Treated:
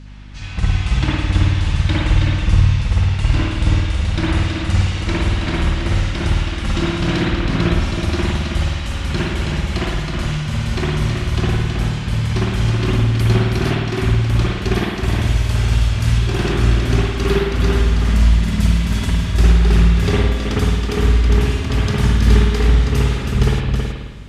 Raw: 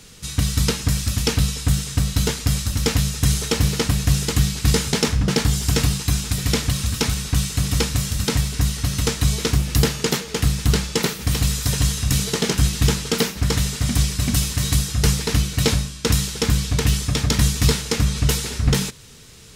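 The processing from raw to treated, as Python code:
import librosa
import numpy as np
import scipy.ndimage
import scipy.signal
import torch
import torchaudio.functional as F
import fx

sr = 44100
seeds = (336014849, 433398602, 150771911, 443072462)

y = fx.speed_glide(x, sr, from_pct=66, to_pct=95)
y = fx.high_shelf(y, sr, hz=3700.0, db=-10.5)
y = y + 10.0 ** (-5.0 / 20.0) * np.pad(y, (int(322 * sr / 1000.0), 0))[:len(y)]
y = fx.rev_spring(y, sr, rt60_s=1.2, pass_ms=(53,), chirp_ms=75, drr_db=-6.0)
y = fx.add_hum(y, sr, base_hz=50, snr_db=21)
y = F.gain(torch.from_numpy(y), -3.5).numpy()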